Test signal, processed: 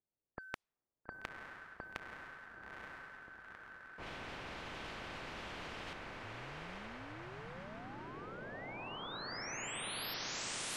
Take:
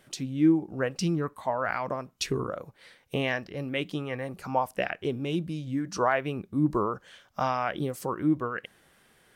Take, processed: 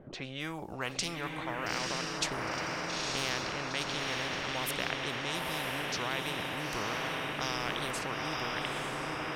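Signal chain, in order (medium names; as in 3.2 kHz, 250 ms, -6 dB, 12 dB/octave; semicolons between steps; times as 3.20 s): level-controlled noise filter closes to 570 Hz, open at -25 dBFS; echo that smears into a reverb 914 ms, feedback 53%, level -4.5 dB; spectrum-flattening compressor 4:1; trim -4 dB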